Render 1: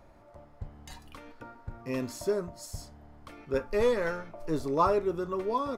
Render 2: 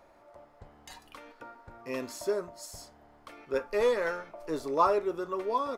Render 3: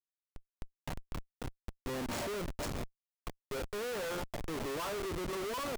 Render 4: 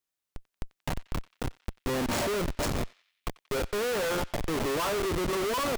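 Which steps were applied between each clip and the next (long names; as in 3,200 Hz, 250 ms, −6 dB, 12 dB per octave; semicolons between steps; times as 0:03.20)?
bass and treble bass −14 dB, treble −1 dB; level +1 dB
comparator with hysteresis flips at −40.5 dBFS; level −4 dB
feedback echo with a band-pass in the loop 91 ms, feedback 54%, band-pass 2,900 Hz, level −19 dB; level +8.5 dB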